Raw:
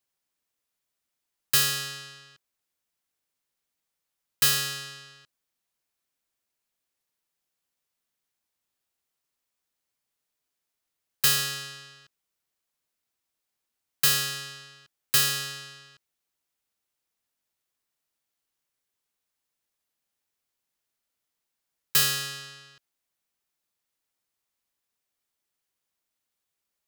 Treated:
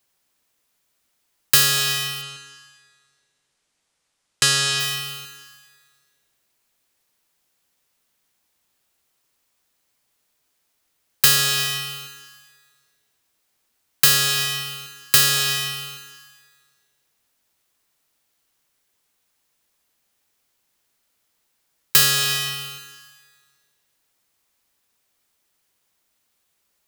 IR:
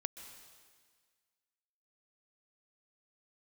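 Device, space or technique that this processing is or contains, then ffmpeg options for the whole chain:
ducked reverb: -filter_complex "[0:a]asplit=3[s0][s1][s2];[1:a]atrim=start_sample=2205[s3];[s1][s3]afir=irnorm=-1:irlink=0[s4];[s2]apad=whole_len=1185205[s5];[s4][s5]sidechaincompress=threshold=0.0316:ratio=8:attack=34:release=206,volume=2.66[s6];[s0][s6]amix=inputs=2:normalize=0,asplit=3[s7][s8][s9];[s7]afade=t=out:st=2.21:d=0.02[s10];[s8]lowpass=f=9600:w=0.5412,lowpass=f=9600:w=1.3066,afade=t=in:st=2.21:d=0.02,afade=t=out:st=4.79:d=0.02[s11];[s9]afade=t=in:st=4.79:d=0.02[s12];[s10][s11][s12]amix=inputs=3:normalize=0,volume=1.33"

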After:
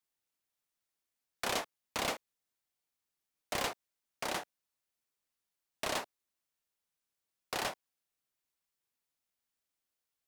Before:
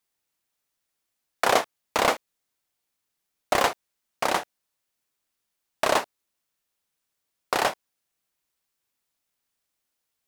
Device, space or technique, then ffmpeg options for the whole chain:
one-band saturation: -filter_complex "[0:a]acrossover=split=310|2100[s0][s1][s2];[s1]asoftclip=type=tanh:threshold=0.0473[s3];[s0][s3][s2]amix=inputs=3:normalize=0,volume=0.398"

